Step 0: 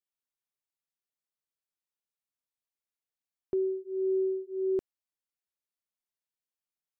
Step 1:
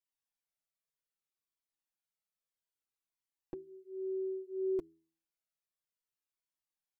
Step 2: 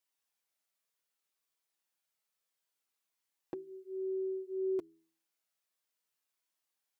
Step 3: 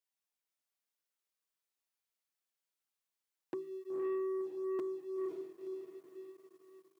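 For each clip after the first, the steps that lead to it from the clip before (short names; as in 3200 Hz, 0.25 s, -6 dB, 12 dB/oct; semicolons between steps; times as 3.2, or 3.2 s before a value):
comb 6.2 ms, depth 62%; de-hum 81.88 Hz, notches 5; cascading flanger falling 0.61 Hz
HPF 360 Hz 6 dB/oct; in parallel at +2 dB: compressor, threshold -46 dBFS, peak gain reduction 11.5 dB
diffused feedback echo 0.504 s, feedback 44%, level -4 dB; sample leveller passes 2; HPF 120 Hz 24 dB/oct; gain -3 dB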